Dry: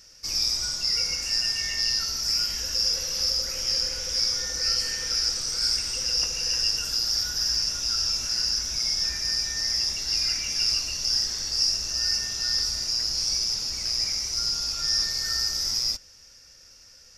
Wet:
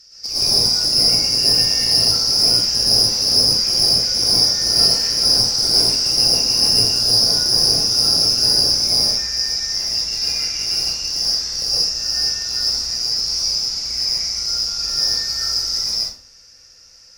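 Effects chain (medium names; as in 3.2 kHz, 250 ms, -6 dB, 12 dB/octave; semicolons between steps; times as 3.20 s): peaking EQ 4.9 kHz +13.5 dB 0.48 oct, from 8.99 s +6 dB; one-sided clip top -16 dBFS; plate-style reverb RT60 0.5 s, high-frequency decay 0.65×, pre-delay 105 ms, DRR -7.5 dB; trim -5.5 dB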